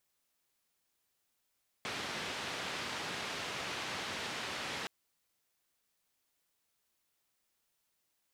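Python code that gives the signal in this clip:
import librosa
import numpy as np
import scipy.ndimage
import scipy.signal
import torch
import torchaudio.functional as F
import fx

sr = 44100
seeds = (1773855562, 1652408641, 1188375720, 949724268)

y = fx.band_noise(sr, seeds[0], length_s=3.02, low_hz=100.0, high_hz=3400.0, level_db=-40.0)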